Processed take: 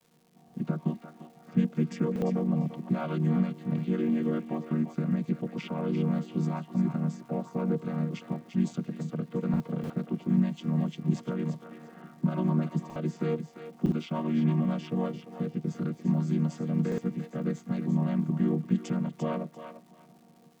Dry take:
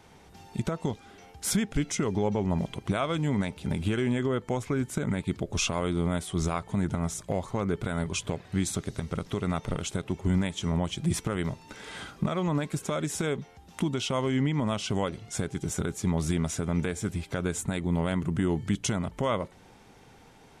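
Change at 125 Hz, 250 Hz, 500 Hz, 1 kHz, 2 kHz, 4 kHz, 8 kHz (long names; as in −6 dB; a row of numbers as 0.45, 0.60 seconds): 0.0 dB, +2.0 dB, −3.5 dB, −5.5 dB, −10.0 dB, −14.0 dB, below −20 dB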